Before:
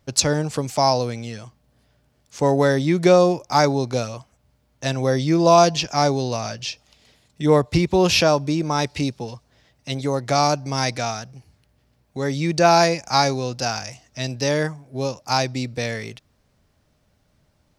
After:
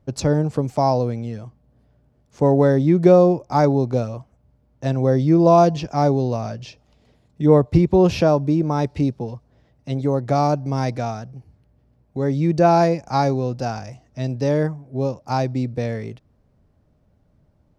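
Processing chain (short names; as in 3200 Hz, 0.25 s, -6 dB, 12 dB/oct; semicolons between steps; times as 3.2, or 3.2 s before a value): tilt shelf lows +9.5 dB, about 1300 Hz; gain -5 dB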